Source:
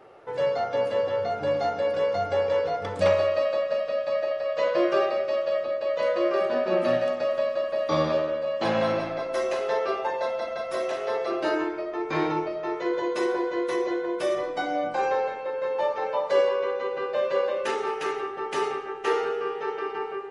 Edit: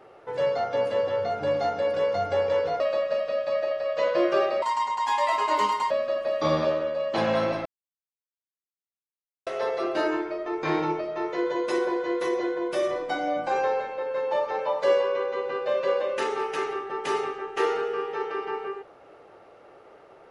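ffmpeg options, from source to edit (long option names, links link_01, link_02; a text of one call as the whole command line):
ffmpeg -i in.wav -filter_complex "[0:a]asplit=6[link_01][link_02][link_03][link_04][link_05][link_06];[link_01]atrim=end=2.802[link_07];[link_02]atrim=start=3.398:end=5.224[link_08];[link_03]atrim=start=5.22:end=7.38,asetpts=PTS-STARTPTS,asetrate=74088,aresample=44100[link_09];[link_04]atrim=start=7.376:end=9.13,asetpts=PTS-STARTPTS,afade=type=out:start_time=1.75:duration=0.004:curve=hsin[link_10];[link_05]atrim=start=9.13:end=10.94,asetpts=PTS-STARTPTS,volume=0[link_11];[link_06]atrim=start=10.94,asetpts=PTS-STARTPTS,afade=type=in:duration=0.004:curve=hsin[link_12];[link_07][link_08]acrossfade=duration=0.004:curve1=hsin:curve2=hsin[link_13];[link_13][link_09]acrossfade=duration=0.004:curve1=hsin:curve2=hsin[link_14];[link_10][link_11][link_12]concat=n=3:v=0:a=1[link_15];[link_14][link_15]acrossfade=duration=0.004:curve1=hsin:curve2=hsin" out.wav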